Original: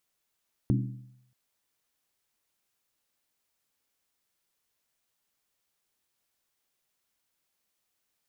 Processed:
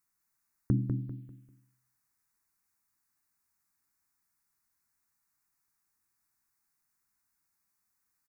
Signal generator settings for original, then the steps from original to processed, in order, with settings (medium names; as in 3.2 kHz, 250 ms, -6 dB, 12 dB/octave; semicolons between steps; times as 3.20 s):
skin hit, lowest mode 126 Hz, decay 0.78 s, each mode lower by 3.5 dB, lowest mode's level -21 dB
touch-sensitive phaser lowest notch 540 Hz, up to 1.2 kHz, full sweep at -41 dBFS; on a send: feedback delay 197 ms, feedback 31%, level -5.5 dB